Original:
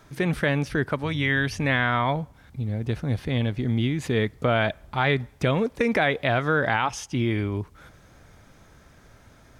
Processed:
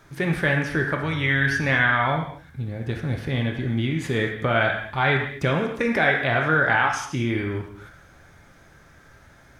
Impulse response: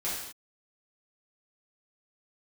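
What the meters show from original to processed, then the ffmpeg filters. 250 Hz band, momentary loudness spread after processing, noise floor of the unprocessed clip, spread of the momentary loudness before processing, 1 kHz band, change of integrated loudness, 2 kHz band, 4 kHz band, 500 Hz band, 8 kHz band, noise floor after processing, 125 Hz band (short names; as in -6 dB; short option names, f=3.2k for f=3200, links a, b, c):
0.0 dB, 10 LU, -54 dBFS, 7 LU, +2.5 dB, +2.0 dB, +5.0 dB, +0.5 dB, 0.0 dB, +0.5 dB, -52 dBFS, +0.5 dB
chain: -filter_complex "[0:a]asplit=2[a][b];[b]equalizer=f=1.6k:w=1.4:g=10.5[c];[1:a]atrim=start_sample=2205[d];[c][d]afir=irnorm=-1:irlink=0,volume=-8.5dB[e];[a][e]amix=inputs=2:normalize=0,volume=-3dB"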